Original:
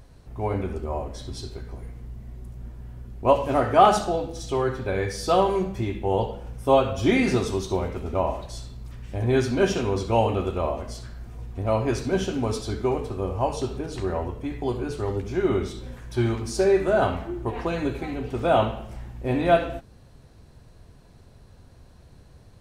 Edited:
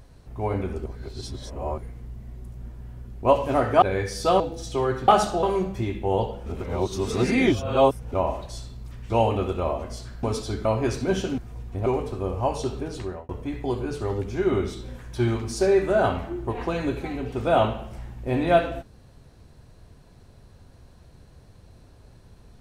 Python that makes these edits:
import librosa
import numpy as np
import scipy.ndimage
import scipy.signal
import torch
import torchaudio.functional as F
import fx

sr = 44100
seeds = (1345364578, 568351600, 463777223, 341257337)

y = fx.edit(x, sr, fx.reverse_span(start_s=0.86, length_s=0.92),
    fx.swap(start_s=3.82, length_s=0.35, other_s=4.85, other_length_s=0.58),
    fx.reverse_span(start_s=6.46, length_s=1.66),
    fx.cut(start_s=9.1, length_s=0.98),
    fx.swap(start_s=11.21, length_s=0.48, other_s=12.42, other_length_s=0.42),
    fx.fade_out_span(start_s=13.91, length_s=0.36), tone=tone)